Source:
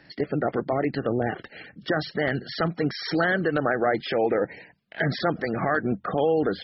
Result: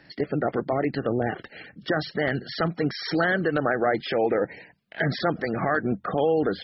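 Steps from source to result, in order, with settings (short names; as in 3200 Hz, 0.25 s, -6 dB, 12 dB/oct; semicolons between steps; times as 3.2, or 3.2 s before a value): 5.61–6.03 notch 2900 Hz, Q 5.7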